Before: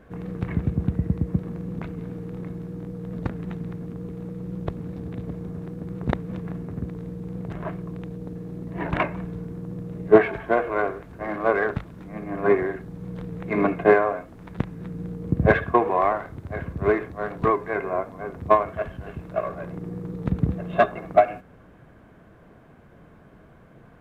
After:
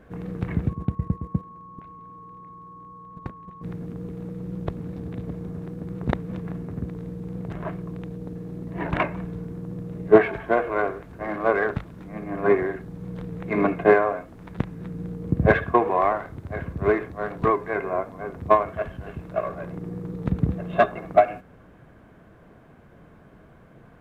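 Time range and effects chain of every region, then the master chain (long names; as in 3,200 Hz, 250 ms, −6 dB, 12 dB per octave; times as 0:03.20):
0:00.68–0:03.62: noise gate −30 dBFS, range −13 dB + output level in coarse steps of 10 dB + steady tone 1,100 Hz −42 dBFS
whole clip: no processing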